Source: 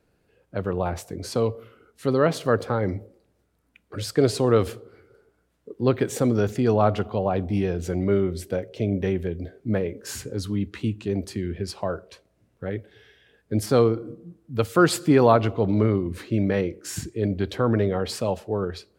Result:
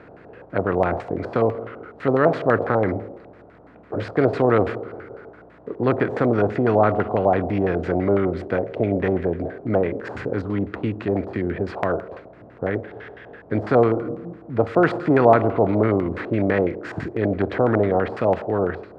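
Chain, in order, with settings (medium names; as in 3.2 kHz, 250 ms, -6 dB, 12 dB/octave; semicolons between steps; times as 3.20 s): spectral levelling over time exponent 0.6; LFO low-pass square 6 Hz 750–2000 Hz; trim -3 dB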